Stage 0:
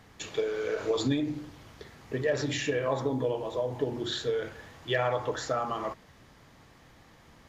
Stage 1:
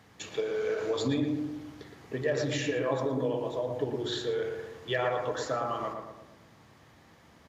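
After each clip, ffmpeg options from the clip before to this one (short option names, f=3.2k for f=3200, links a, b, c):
-filter_complex "[0:a]highpass=83,asplit=2[a][b];[b]adelay=116,lowpass=f=1.5k:p=1,volume=-4dB,asplit=2[c][d];[d]adelay=116,lowpass=f=1.5k:p=1,volume=0.53,asplit=2[e][f];[f]adelay=116,lowpass=f=1.5k:p=1,volume=0.53,asplit=2[g][h];[h]adelay=116,lowpass=f=1.5k:p=1,volume=0.53,asplit=2[i][j];[j]adelay=116,lowpass=f=1.5k:p=1,volume=0.53,asplit=2[k][l];[l]adelay=116,lowpass=f=1.5k:p=1,volume=0.53,asplit=2[m][n];[n]adelay=116,lowpass=f=1.5k:p=1,volume=0.53[o];[c][e][g][i][k][m][o]amix=inputs=7:normalize=0[p];[a][p]amix=inputs=2:normalize=0,volume=-2dB"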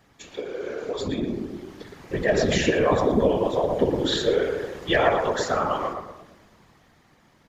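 -af "dynaudnorm=f=280:g=13:m=11dB,afftfilt=real='hypot(re,im)*cos(2*PI*random(0))':imag='hypot(re,im)*sin(2*PI*random(1))':win_size=512:overlap=0.75,volume=4.5dB"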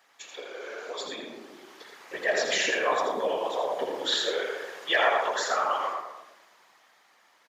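-af "highpass=770,aecho=1:1:82:0.473"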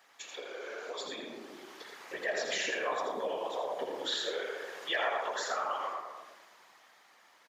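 -af "acompressor=threshold=-44dB:ratio=1.5"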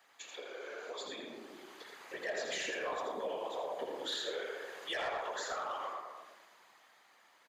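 -filter_complex "[0:a]bandreject=f=5.5k:w=9.4,acrossover=split=230|580|4400[a][b][c][d];[c]asoftclip=type=tanh:threshold=-31.5dB[e];[a][b][e][d]amix=inputs=4:normalize=0,volume=-3dB"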